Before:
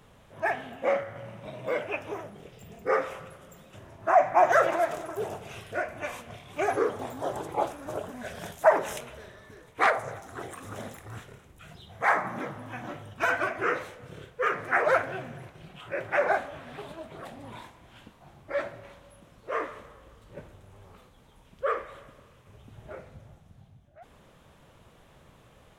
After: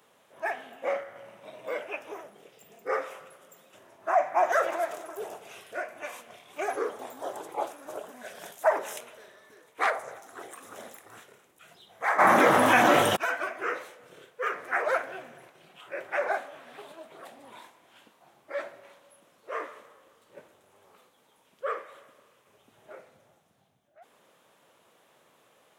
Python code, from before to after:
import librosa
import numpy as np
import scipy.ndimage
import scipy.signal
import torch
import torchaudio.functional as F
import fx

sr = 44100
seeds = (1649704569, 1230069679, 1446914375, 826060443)

y = fx.env_flatten(x, sr, amount_pct=100, at=(12.18, 13.15), fade=0.02)
y = scipy.signal.sosfilt(scipy.signal.butter(2, 340.0, 'highpass', fs=sr, output='sos'), y)
y = fx.high_shelf(y, sr, hz=8200.0, db=7.0)
y = y * 10.0 ** (-3.5 / 20.0)